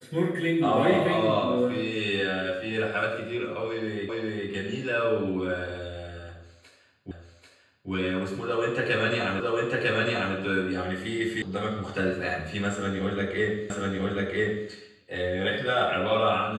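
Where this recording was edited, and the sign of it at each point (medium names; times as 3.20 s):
4.09 s: repeat of the last 0.41 s
7.11 s: repeat of the last 0.79 s
9.40 s: repeat of the last 0.95 s
11.42 s: sound stops dead
13.70 s: repeat of the last 0.99 s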